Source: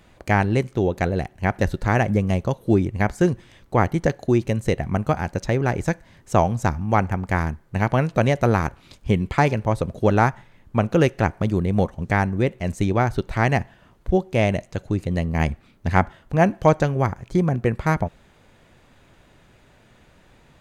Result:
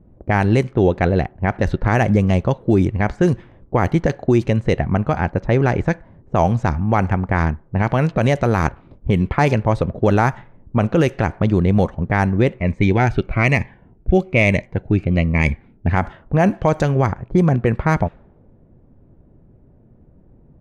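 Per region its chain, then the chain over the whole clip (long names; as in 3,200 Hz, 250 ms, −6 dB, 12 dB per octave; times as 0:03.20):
0:12.58–0:15.90: parametric band 2,300 Hz +12 dB 0.41 octaves + phaser whose notches keep moving one way falling 1.1 Hz
whole clip: low-pass that shuts in the quiet parts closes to 340 Hz, open at −13.5 dBFS; boost into a limiter +10.5 dB; level −4 dB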